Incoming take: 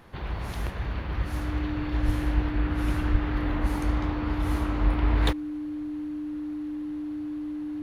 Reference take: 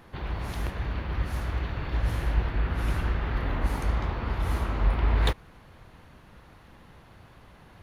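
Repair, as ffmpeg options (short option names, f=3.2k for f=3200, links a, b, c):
-filter_complex "[0:a]bandreject=f=300:w=30,asplit=3[a][b][c];[a]afade=t=out:st=2.05:d=0.02[d];[b]highpass=f=140:w=0.5412,highpass=f=140:w=1.3066,afade=t=in:st=2.05:d=0.02,afade=t=out:st=2.17:d=0.02[e];[c]afade=t=in:st=2.17:d=0.02[f];[d][e][f]amix=inputs=3:normalize=0,asplit=3[g][h][i];[g]afade=t=out:st=3.11:d=0.02[j];[h]highpass=f=140:w=0.5412,highpass=f=140:w=1.3066,afade=t=in:st=3.11:d=0.02,afade=t=out:st=3.23:d=0.02[k];[i]afade=t=in:st=3.23:d=0.02[l];[j][k][l]amix=inputs=3:normalize=0"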